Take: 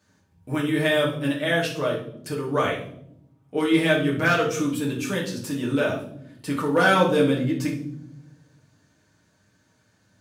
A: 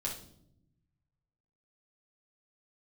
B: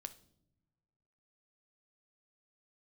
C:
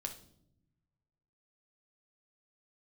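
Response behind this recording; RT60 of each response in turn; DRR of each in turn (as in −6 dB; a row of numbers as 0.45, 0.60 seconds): A; non-exponential decay, non-exponential decay, non-exponential decay; −4.0, 9.5, 3.0 decibels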